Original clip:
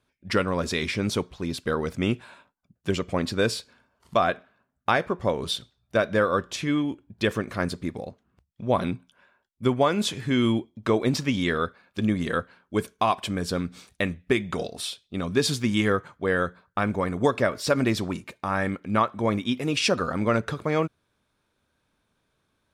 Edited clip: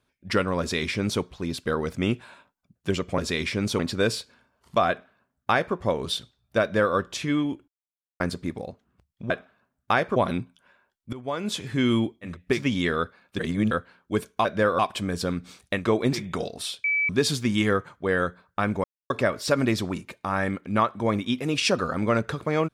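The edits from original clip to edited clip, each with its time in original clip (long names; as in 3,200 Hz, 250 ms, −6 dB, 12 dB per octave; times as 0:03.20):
0:00.60–0:01.21: duplicate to 0:03.18
0:04.28–0:05.14: duplicate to 0:08.69
0:06.01–0:06.35: duplicate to 0:13.07
0:07.07–0:07.59: silence
0:09.66–0:10.25: fade in, from −21.5 dB
0:10.82–0:11.20: swap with 0:14.09–0:14.38, crossfade 0.16 s
0:12.01–0:12.33: reverse
0:15.03–0:15.28: beep over 2,300 Hz −20.5 dBFS
0:17.03–0:17.29: silence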